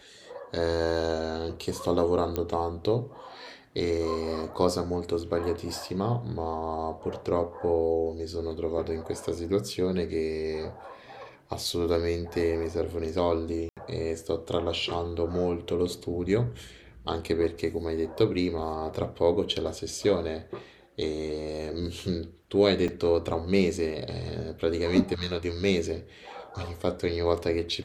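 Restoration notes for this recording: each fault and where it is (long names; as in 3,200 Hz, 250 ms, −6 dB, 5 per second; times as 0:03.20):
0:02.36: click −15 dBFS
0:13.69–0:13.77: drop-out 77 ms
0:22.88: drop-out 3.3 ms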